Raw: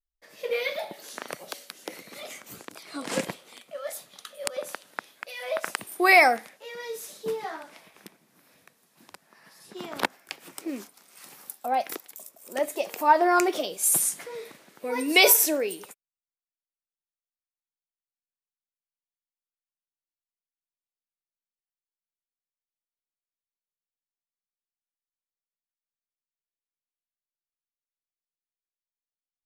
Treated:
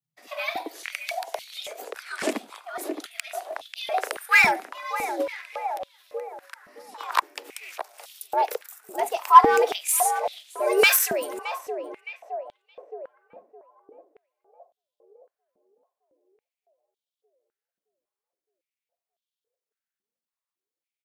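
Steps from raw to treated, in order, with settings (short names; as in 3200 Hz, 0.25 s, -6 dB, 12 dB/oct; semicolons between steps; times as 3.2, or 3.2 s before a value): tempo 1.4×; frequency shift +110 Hz; in parallel at -5.5 dB: wavefolder -18 dBFS; on the sum: tape echo 0.617 s, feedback 65%, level -7 dB, low-pass 1100 Hz; stepped high-pass 3.6 Hz 210–3400 Hz; gain -3.5 dB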